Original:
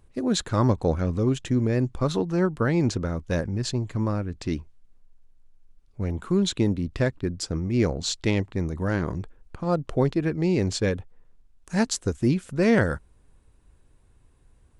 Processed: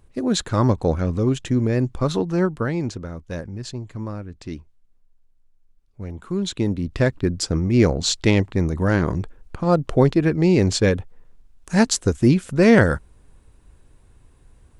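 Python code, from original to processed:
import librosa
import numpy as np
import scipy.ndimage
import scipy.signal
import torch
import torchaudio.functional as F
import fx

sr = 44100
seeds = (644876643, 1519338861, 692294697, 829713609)

y = fx.gain(x, sr, db=fx.line((2.42, 3.0), (2.95, -4.5), (6.15, -4.5), (7.2, 6.5)))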